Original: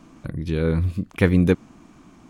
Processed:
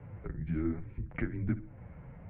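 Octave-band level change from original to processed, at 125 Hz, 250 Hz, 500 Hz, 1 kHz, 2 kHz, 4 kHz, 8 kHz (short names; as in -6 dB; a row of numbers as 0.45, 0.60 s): -14.0 dB, -13.5 dB, -20.5 dB, -14.0 dB, -15.0 dB, under -25 dB, n/a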